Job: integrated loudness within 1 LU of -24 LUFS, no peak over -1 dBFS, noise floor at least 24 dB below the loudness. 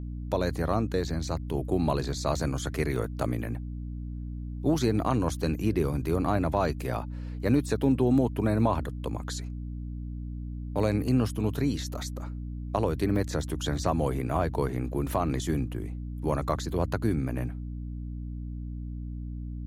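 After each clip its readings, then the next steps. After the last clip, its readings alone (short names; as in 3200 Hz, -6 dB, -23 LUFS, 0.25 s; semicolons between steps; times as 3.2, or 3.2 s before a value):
dropouts 3; longest dropout 1.1 ms; hum 60 Hz; harmonics up to 300 Hz; hum level -33 dBFS; loudness -29.5 LUFS; peak -12.0 dBFS; loudness target -24.0 LUFS
-> interpolate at 2.96/11.08/13.16, 1.1 ms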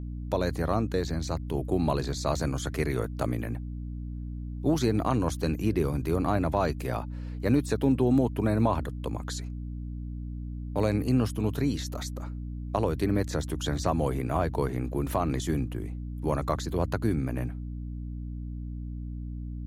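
dropouts 0; hum 60 Hz; harmonics up to 300 Hz; hum level -33 dBFS
-> notches 60/120/180/240/300 Hz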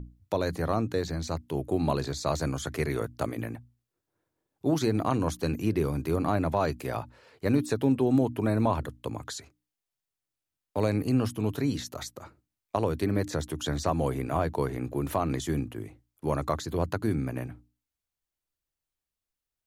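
hum none; loudness -29.5 LUFS; peak -13.0 dBFS; loudness target -24.0 LUFS
-> gain +5.5 dB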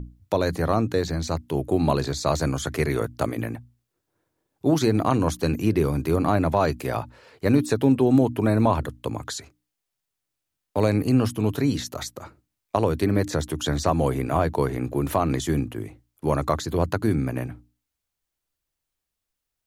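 loudness -24.0 LUFS; peak -7.5 dBFS; noise floor -83 dBFS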